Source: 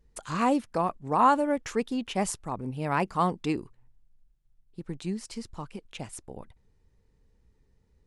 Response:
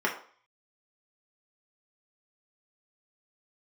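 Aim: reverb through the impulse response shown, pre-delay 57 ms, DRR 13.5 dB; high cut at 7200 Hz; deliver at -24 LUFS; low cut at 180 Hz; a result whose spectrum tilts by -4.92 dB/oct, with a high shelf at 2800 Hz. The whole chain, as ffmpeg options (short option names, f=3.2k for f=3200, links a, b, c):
-filter_complex "[0:a]highpass=180,lowpass=7.2k,highshelf=f=2.8k:g=-3.5,asplit=2[a][b];[1:a]atrim=start_sample=2205,adelay=57[c];[b][c]afir=irnorm=-1:irlink=0,volume=-25dB[d];[a][d]amix=inputs=2:normalize=0,volume=5dB"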